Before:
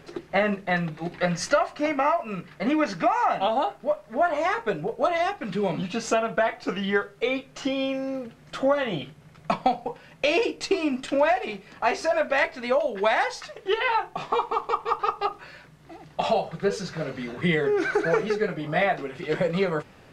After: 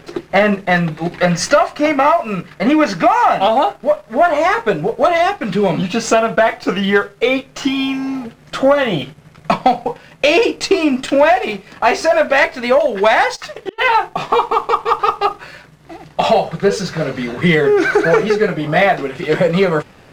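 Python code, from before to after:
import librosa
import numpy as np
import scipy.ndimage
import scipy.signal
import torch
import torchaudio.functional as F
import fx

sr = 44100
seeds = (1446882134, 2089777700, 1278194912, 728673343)

y = fx.leveller(x, sr, passes=1)
y = fx.spec_repair(y, sr, seeds[0], start_s=7.67, length_s=0.55, low_hz=380.0, high_hz=930.0, source='before')
y = fx.gate_flip(y, sr, shuts_db=-18.0, range_db=-34, at=(13.35, 13.78), fade=0.02)
y = y * librosa.db_to_amplitude(7.5)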